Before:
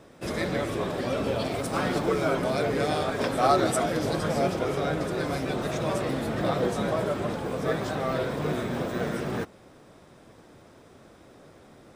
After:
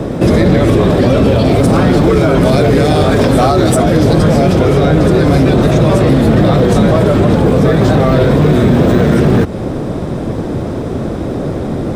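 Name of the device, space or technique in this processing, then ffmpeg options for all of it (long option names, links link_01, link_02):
mastering chain: -filter_complex "[0:a]equalizer=frequency=3800:width_type=o:width=0.77:gain=2.5,acrossover=split=95|1400[link_01][link_02][link_03];[link_01]acompressor=threshold=-45dB:ratio=4[link_04];[link_02]acompressor=threshold=-34dB:ratio=4[link_05];[link_03]acompressor=threshold=-36dB:ratio=4[link_06];[link_04][link_05][link_06]amix=inputs=3:normalize=0,acompressor=threshold=-40dB:ratio=1.5,asoftclip=type=tanh:threshold=-27dB,tiltshelf=frequency=750:gain=9,asoftclip=type=hard:threshold=-26dB,alimiter=level_in=30dB:limit=-1dB:release=50:level=0:latency=1,asettb=1/sr,asplit=3[link_07][link_08][link_09];[link_07]atrim=end=2.414[link_10];[link_08]atrim=start=2.41:end=3.82,asetpts=PTS-STARTPTS,afade=type=in:duration=0.004:curve=qsin,afade=type=out:start_time=1.406:duration=0.004:curve=qsin,highshelf=frequency=4500:gain=5[link_11];[link_09]atrim=start=3.816[link_12];[link_10][link_11]acrossfade=duration=0.004:curve1=hsin:curve2=qsin[link_13];[link_13][link_12]acrossfade=duration=0.004:curve1=qsin:curve2=hsin,volume=-1dB"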